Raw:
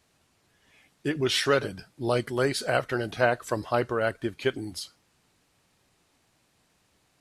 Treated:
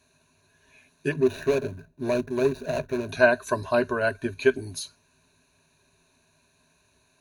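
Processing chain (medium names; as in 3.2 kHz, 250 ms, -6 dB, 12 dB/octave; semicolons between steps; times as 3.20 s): 1.12–3.09 s: median filter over 41 samples; rippled EQ curve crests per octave 1.5, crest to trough 15 dB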